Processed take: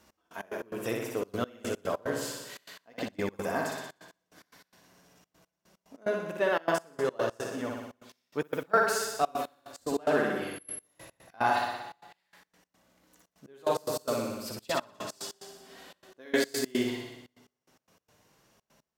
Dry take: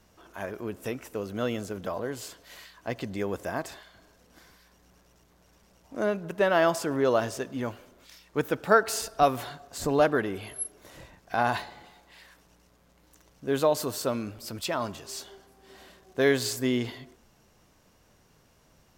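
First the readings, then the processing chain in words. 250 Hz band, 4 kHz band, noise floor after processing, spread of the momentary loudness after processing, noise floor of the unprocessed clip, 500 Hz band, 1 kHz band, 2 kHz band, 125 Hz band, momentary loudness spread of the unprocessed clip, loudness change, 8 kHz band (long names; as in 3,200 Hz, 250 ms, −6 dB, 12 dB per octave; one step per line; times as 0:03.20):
−4.0 dB, −2.5 dB, below −85 dBFS, 18 LU, −62 dBFS, −3.5 dB, −2.5 dB, −2.0 dB, −7.0 dB, 16 LU, −3.5 dB, −3.0 dB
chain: high-pass filter 190 Hz 6 dB per octave
flutter between parallel walls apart 10.4 metres, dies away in 1.1 s
flanger 0.31 Hz, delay 3.3 ms, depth 4.6 ms, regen −47%
gate pattern "x..x.x.xxxxx." 146 BPM −24 dB
speech leveller within 5 dB 2 s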